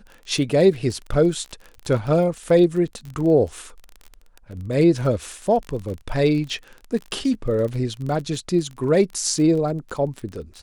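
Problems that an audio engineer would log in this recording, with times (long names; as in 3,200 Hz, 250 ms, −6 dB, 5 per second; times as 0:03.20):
surface crackle 30 per second −29 dBFS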